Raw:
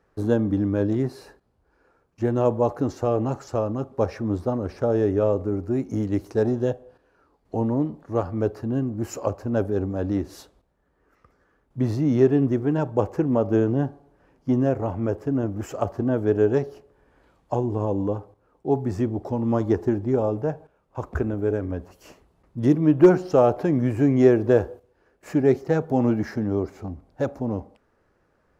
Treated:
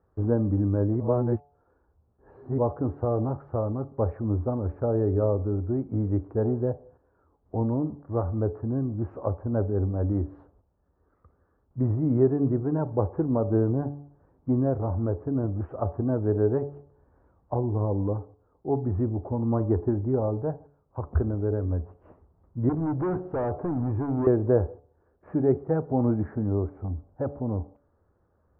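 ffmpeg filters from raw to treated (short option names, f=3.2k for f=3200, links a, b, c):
-filter_complex "[0:a]asettb=1/sr,asplit=3[a][b][c];[a]atrim=end=22.694[d];[b]atrim=start=22.69:end=24.27,asetpts=PTS-STARTPTS,afade=t=in:d=0.004:c=qsin,afade=t=out:st=1.576:d=0.004:c=qsin,volume=21dB,asoftclip=hard,volume=-21dB[e];[c]atrim=start=24.266[f];[d][e]acrossfade=d=0.004:c1=hsin:c2=qsin[g];[g][f]acrossfade=d=0.004:c1=qsin:c2=hsin,asplit=3[h][i][j];[h]atrim=end=1.002[k];[i]atrim=start=0.998:end=2.582,asetpts=PTS-STARTPTS,areverse[l];[j]atrim=start=2.578[m];[k][l]acrossfade=d=0.004:c1=hsin:c2=hsin[n];[n][m]acrossfade=d=0.004:c1=hsin:c2=hsin,lowpass=f=1.3k:w=0.5412,lowpass=f=1.3k:w=1.3066,equalizer=f=82:w=1.8:g=11.5,bandreject=f=143.6:t=h:w=4,bandreject=f=287.2:t=h:w=4,bandreject=f=430.8:t=h:w=4,bandreject=f=574.4:t=h:w=4,bandreject=f=718:t=h:w=4,bandreject=f=861.6:t=h:w=4,volume=-4dB"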